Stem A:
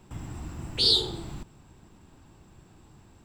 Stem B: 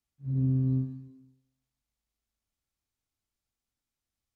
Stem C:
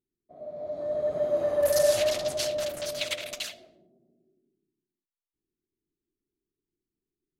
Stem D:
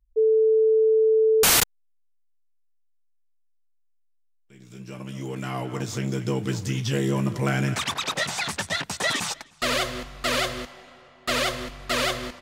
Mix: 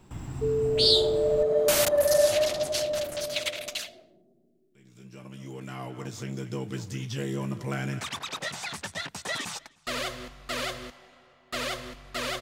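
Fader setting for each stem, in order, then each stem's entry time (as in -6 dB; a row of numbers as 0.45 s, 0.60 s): 0.0 dB, -10.5 dB, +1.0 dB, -7.5 dB; 0.00 s, 0.00 s, 0.35 s, 0.25 s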